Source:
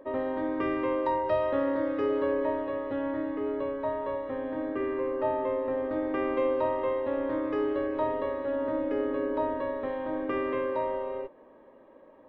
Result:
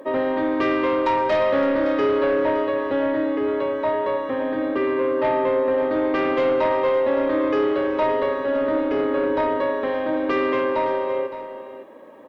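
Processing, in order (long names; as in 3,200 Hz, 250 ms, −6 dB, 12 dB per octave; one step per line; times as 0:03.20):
high-pass filter 130 Hz 12 dB per octave
high-shelf EQ 3,100 Hz +10.5 dB
in parallel at −5 dB: sine wavefolder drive 7 dB, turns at −16 dBFS
on the sum: single-tap delay 565 ms −12 dB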